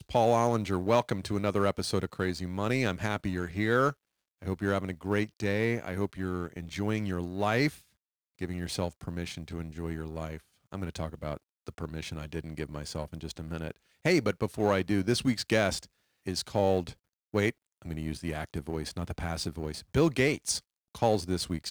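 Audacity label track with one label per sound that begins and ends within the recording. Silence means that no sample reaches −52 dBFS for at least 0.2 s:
4.420000	7.820000	sound
8.390000	10.410000	sound
10.720000	11.370000	sound
11.670000	13.760000	sound
14.050000	15.860000	sound
16.260000	16.930000	sound
17.340000	17.520000	sound
17.820000	20.600000	sound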